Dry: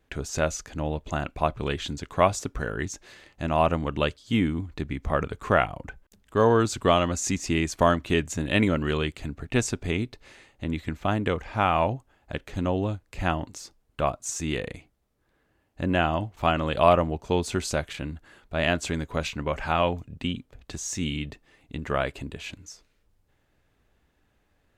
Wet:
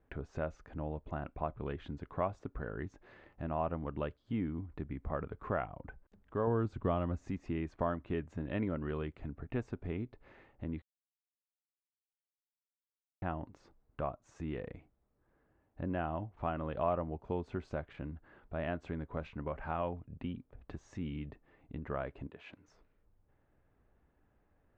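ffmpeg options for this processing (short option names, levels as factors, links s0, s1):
-filter_complex "[0:a]asettb=1/sr,asplit=3[s0][s1][s2];[s0]atrim=end=6.474[s3];[s1]atrim=start=6.47:end=7.3,asetpts=PTS-STARTPTS,afade=t=in:d=0.004:c=qsin,afade=t=out:st=0.826:d=0.004:c=qsin,lowshelf=f=230:g=8.5[s4];[s2]atrim=start=7.296[s5];[s3][s4]acrossfade=d=0.004:c1=hsin:c2=qsin[s6];[s6][s5]acrossfade=d=0.004:c1=qsin:c2=hsin,asettb=1/sr,asplit=3[s7][s8][s9];[s7]atrim=end=22.274[s10];[s8]atrim=start=22.27:end=22.68,asetpts=PTS-STARTPTS,afade=t=in:d=0.004:c=qsin,afade=t=out:st=0.406:d=0.004:c=qsin,highpass=f=530:p=1[s11];[s9]atrim=start=22.676[s12];[s10][s11]acrossfade=d=0.004:c1=hsin:c2=qsin[s13];[s13][s12]acrossfade=d=0.004:c1=qsin:c2=hsin,asplit=3[s14][s15][s16];[s14]atrim=end=10.82,asetpts=PTS-STARTPTS,afade=t=out:st=10.816:d=0.004:c=hsin[s17];[s15]atrim=start=10.82:end=13.22,asetpts=PTS-STARTPTS,volume=0[s18];[s16]atrim=start=13.22,asetpts=PTS-STARTPTS,afade=t=in:d=0.004:c=hsin[s19];[s17][s18][s19]concat=n=3:v=0:a=1,deesser=0.5,lowpass=1400,acompressor=threshold=0.00562:ratio=1.5,volume=0.708"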